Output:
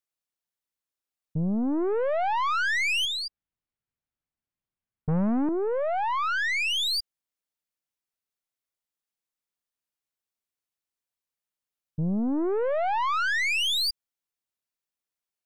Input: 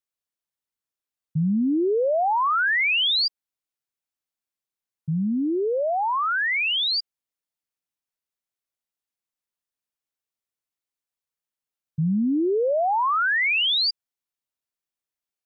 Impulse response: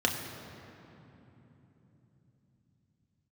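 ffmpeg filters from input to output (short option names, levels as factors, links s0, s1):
-filter_complex "[0:a]asettb=1/sr,asplit=3[s0][s1][s2];[s0]atrim=end=3.054[s3];[s1]atrim=start=3.05:end=5.49,asetpts=PTS-STARTPTS,afade=t=in:d=0.004:c=qsin,afade=t=out:st=2.436:d=0.004:c=qsin,bass=f=250:g=13,treble=f=4000:g=-15[s4];[s2]atrim=start=5.486[s5];[s3][s4]acrossfade=d=0.004:c1=hsin:c2=qsin[s6];[s6][s5]acrossfade=d=0.004:c1=qsin:c2=hsin,aeval=exprs='(tanh(14.1*val(0)+0.4)-tanh(0.4))/14.1':c=same"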